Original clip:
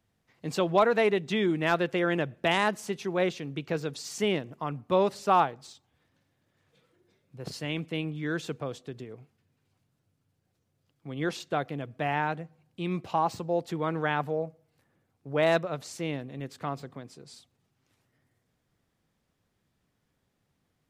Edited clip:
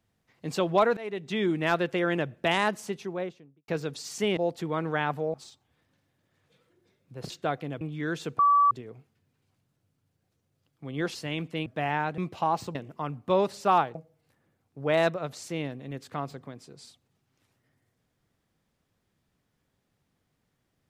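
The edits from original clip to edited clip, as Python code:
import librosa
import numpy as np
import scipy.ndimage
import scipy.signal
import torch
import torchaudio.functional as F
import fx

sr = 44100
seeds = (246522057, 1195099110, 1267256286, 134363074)

y = fx.studio_fade_out(x, sr, start_s=2.75, length_s=0.93)
y = fx.edit(y, sr, fx.fade_in_from(start_s=0.97, length_s=0.49, floor_db=-21.0),
    fx.swap(start_s=4.37, length_s=1.2, other_s=13.47, other_length_s=0.97),
    fx.swap(start_s=7.53, length_s=0.51, other_s=11.38, other_length_s=0.51),
    fx.bleep(start_s=8.62, length_s=0.32, hz=1150.0, db=-17.0),
    fx.cut(start_s=12.41, length_s=0.49), tone=tone)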